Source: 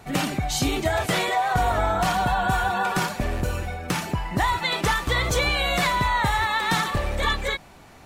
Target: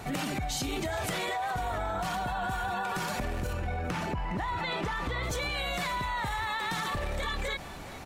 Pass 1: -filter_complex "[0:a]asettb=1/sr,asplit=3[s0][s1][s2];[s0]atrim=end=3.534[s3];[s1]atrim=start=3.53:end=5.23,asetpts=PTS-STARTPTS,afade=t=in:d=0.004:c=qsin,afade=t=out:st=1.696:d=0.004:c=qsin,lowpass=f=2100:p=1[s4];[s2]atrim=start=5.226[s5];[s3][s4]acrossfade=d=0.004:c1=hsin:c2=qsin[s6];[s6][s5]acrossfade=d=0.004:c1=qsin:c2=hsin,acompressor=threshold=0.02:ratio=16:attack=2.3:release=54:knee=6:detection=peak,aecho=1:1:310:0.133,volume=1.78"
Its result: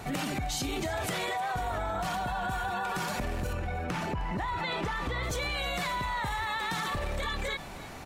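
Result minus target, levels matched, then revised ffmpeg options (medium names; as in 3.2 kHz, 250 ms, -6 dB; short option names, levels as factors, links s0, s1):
echo 103 ms early
-filter_complex "[0:a]asettb=1/sr,asplit=3[s0][s1][s2];[s0]atrim=end=3.534[s3];[s1]atrim=start=3.53:end=5.23,asetpts=PTS-STARTPTS,afade=t=in:d=0.004:c=qsin,afade=t=out:st=1.696:d=0.004:c=qsin,lowpass=f=2100:p=1[s4];[s2]atrim=start=5.226[s5];[s3][s4]acrossfade=d=0.004:c1=hsin:c2=qsin[s6];[s6][s5]acrossfade=d=0.004:c1=qsin:c2=hsin,acompressor=threshold=0.02:ratio=16:attack=2.3:release=54:knee=6:detection=peak,aecho=1:1:413:0.133,volume=1.78"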